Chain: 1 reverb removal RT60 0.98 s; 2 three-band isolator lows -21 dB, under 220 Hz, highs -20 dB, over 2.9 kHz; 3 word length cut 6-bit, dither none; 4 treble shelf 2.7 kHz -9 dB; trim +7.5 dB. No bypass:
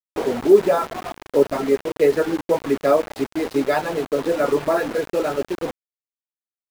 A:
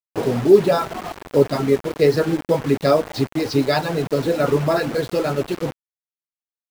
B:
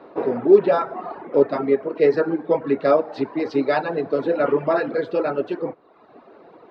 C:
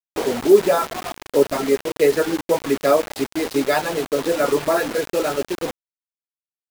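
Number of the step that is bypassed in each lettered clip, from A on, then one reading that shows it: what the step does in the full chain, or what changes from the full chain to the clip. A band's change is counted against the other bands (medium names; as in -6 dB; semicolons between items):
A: 2, 125 Hz band +11.0 dB; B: 3, distortion -14 dB; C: 4, 8 kHz band +7.5 dB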